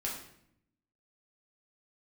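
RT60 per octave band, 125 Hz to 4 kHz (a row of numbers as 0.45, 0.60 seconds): 1.1, 1.1, 0.75, 0.65, 0.65, 0.55 seconds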